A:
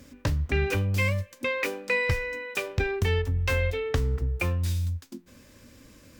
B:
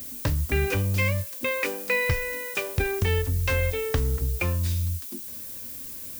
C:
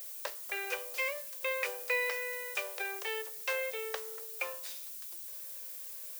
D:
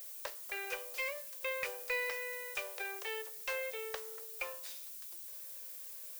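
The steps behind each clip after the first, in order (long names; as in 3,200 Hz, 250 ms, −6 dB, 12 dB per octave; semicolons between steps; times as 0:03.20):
background noise violet −39 dBFS; level +1 dB
Butterworth high-pass 460 Hz 48 dB per octave; level −6.5 dB
one-sided soft clipper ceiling −21.5 dBFS; level −3 dB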